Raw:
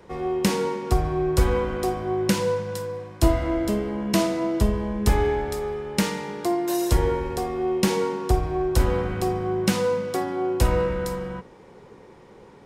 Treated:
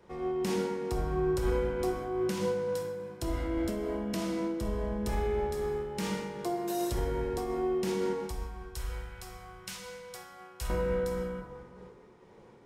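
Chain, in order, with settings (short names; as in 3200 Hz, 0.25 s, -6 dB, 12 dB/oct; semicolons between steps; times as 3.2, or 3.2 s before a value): 8.13–10.7 passive tone stack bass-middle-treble 10-0-10; limiter -15.5 dBFS, peak gain reduction 10 dB; plate-style reverb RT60 1.9 s, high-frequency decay 0.45×, DRR 3 dB; noise-modulated level, depth 50%; gain -7 dB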